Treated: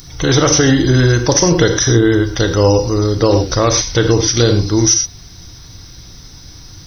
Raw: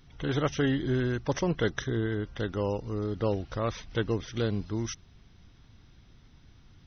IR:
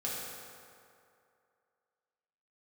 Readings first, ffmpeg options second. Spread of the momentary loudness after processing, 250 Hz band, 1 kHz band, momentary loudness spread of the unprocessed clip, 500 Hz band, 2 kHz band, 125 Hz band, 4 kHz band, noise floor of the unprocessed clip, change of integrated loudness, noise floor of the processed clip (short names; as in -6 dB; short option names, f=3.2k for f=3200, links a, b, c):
3 LU, +16.5 dB, +16.5 dB, 6 LU, +17.0 dB, +16.0 dB, +17.5 dB, +23.0 dB, -57 dBFS, +18.0 dB, -37 dBFS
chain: -filter_complex "[0:a]asplit=2[a][b];[1:a]atrim=start_sample=2205,atrim=end_sample=3528,asetrate=28665,aresample=44100[c];[b][c]afir=irnorm=-1:irlink=0,volume=-5.5dB[d];[a][d]amix=inputs=2:normalize=0,aexciter=amount=6.4:drive=6.7:freq=4.4k,equalizer=f=210:w=3.8:g=-6,alimiter=level_in=15dB:limit=-1dB:release=50:level=0:latency=1,volume=-1dB"